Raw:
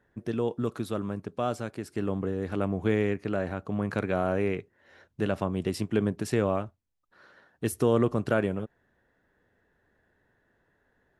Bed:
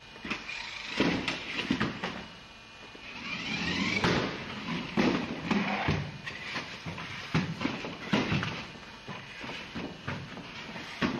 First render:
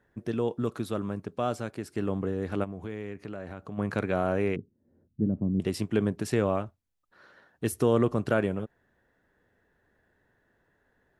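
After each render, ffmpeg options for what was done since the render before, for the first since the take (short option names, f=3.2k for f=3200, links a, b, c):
-filter_complex "[0:a]asplit=3[a][b][c];[a]afade=t=out:st=2.63:d=0.02[d];[b]acompressor=threshold=-38dB:ratio=2.5:attack=3.2:release=140:knee=1:detection=peak,afade=t=in:st=2.63:d=0.02,afade=t=out:st=3.77:d=0.02[e];[c]afade=t=in:st=3.77:d=0.02[f];[d][e][f]amix=inputs=3:normalize=0,asettb=1/sr,asplit=3[g][h][i];[g]atrim=end=4.564[j];[h]atrim=start=4.56:end=5.6,asetpts=PTS-STARTPTS,afade=t=in:d=0.004:c=qsin,afade=t=out:st=1.036:d=0.004:c=qsin,lowpass=f=240:t=q:w=2[k];[i]atrim=start=5.596[l];[j][k]acrossfade=d=0.004:c1=hsin:c2=qsin[m];[m][l]acrossfade=d=0.004:c1=qsin:c2=hsin"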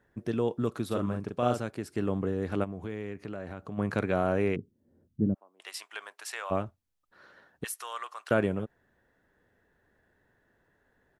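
-filter_complex "[0:a]asplit=3[a][b][c];[a]afade=t=out:st=0.9:d=0.02[d];[b]asplit=2[e][f];[f]adelay=41,volume=-3.5dB[g];[e][g]amix=inputs=2:normalize=0,afade=t=in:st=0.9:d=0.02,afade=t=out:st=1.58:d=0.02[h];[c]afade=t=in:st=1.58:d=0.02[i];[d][h][i]amix=inputs=3:normalize=0,asplit=3[j][k][l];[j]afade=t=out:st=5.33:d=0.02[m];[k]highpass=f=860:w=0.5412,highpass=f=860:w=1.3066,afade=t=in:st=5.33:d=0.02,afade=t=out:st=6.5:d=0.02[n];[l]afade=t=in:st=6.5:d=0.02[o];[m][n][o]amix=inputs=3:normalize=0,asettb=1/sr,asplit=3[p][q][r];[p]atrim=end=7.644[s];[q]atrim=start=7.64:end=8.31,asetpts=PTS-STARTPTS,afade=t=in:d=0.004:c=qsin,afade=t=out:st=0.666:d=0.004:c=qsin,highpass=f=1k:w=0.5412,highpass=f=1k:w=1.3066[t];[r]atrim=start=8.306[u];[s][t]acrossfade=d=0.004:c1=hsin:c2=qsin[v];[v][u]acrossfade=d=0.004:c1=qsin:c2=hsin"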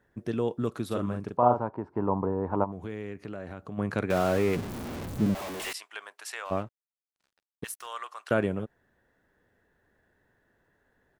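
-filter_complex "[0:a]asettb=1/sr,asplit=3[a][b][c];[a]atrim=end=1.374[d];[b]atrim=start=1.37:end=2.72,asetpts=PTS-STARTPTS,afade=t=in:d=0.004:c=qsin,afade=t=out:st=1.346:d=0.004:c=qsin,lowpass=f=940:t=q:w=9.7[e];[c]atrim=start=2.716[f];[d][e]acrossfade=d=0.004:c1=hsin:c2=qsin[g];[g][f]acrossfade=d=0.004:c1=qsin:c2=hsin,asettb=1/sr,asplit=3[h][i][j];[h]atrim=end=4.104[k];[i]atrim=start=4.1:end=5.73,asetpts=PTS-STARTPTS,afade=t=in:d=0.004:c=qsin,afade=t=out:st=1.626:d=0.004:c=qsin,aeval=exprs='val(0)+0.5*0.0299*sgn(val(0))':c=same[l];[j]atrim=start=5.726[m];[k][l]acrossfade=d=0.004:c1=hsin:c2=qsin[n];[n][m]acrossfade=d=0.004:c1=qsin:c2=hsin,asettb=1/sr,asplit=3[o][p][q];[o]atrim=end=6.454[r];[p]atrim=start=6.45:end=7.87,asetpts=PTS-STARTPTS,afade=t=in:d=0.004:c=qsin,afade=t=out:st=1.416:d=0.004:c=qsin,aeval=exprs='sgn(val(0))*max(abs(val(0))-0.00335,0)':c=same[s];[q]atrim=start=7.866[t];[r][s]acrossfade=d=0.004:c1=hsin:c2=qsin[u];[u][t]acrossfade=d=0.004:c1=qsin:c2=hsin"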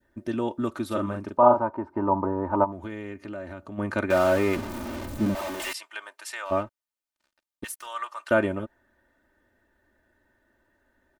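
-af "aecho=1:1:3.3:0.74,adynamicequalizer=threshold=0.0158:dfrequency=1100:dqfactor=0.75:tfrequency=1100:tqfactor=0.75:attack=5:release=100:ratio=0.375:range=2.5:mode=boostabove:tftype=bell"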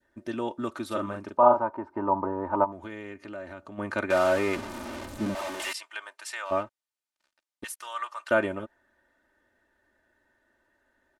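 -af "lowpass=11k,lowshelf=f=310:g=-8.5"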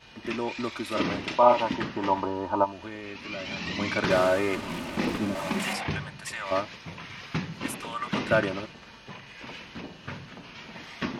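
-filter_complex "[1:a]volume=-2dB[a];[0:a][a]amix=inputs=2:normalize=0"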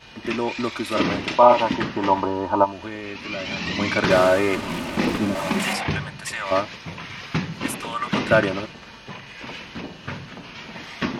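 -af "volume=6dB,alimiter=limit=-1dB:level=0:latency=1"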